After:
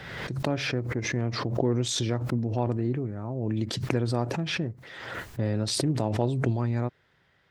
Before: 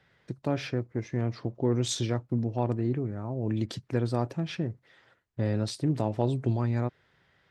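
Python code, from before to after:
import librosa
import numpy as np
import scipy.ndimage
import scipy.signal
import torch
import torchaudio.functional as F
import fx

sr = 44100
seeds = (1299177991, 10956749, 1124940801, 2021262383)

y = fx.pre_swell(x, sr, db_per_s=38.0)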